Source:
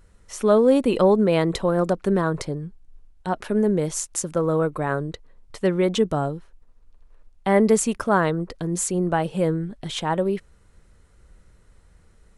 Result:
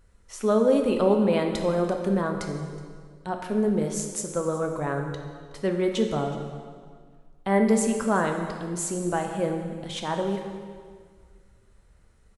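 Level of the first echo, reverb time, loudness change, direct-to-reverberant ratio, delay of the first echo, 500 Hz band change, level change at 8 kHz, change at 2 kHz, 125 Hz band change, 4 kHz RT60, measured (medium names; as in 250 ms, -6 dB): -20.0 dB, 1.8 s, -3.5 dB, 3.0 dB, 370 ms, -3.5 dB, -4.0 dB, -3.5 dB, -5.0 dB, 1.6 s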